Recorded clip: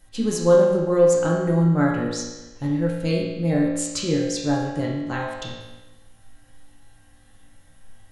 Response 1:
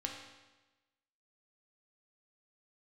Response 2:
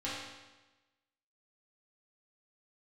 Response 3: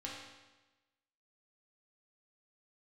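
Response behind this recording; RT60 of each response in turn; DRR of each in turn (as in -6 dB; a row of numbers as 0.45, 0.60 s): 3; 1.1, 1.1, 1.1 s; 0.0, -9.5, -4.5 dB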